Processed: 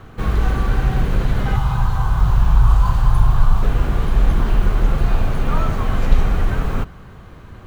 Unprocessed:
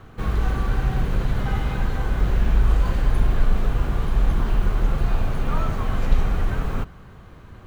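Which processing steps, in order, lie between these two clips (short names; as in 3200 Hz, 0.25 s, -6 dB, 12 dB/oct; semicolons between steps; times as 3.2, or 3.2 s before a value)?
1.56–3.63 graphic EQ 125/250/500/1000/2000 Hz +8/-11/-10/+11/-10 dB; gain +4.5 dB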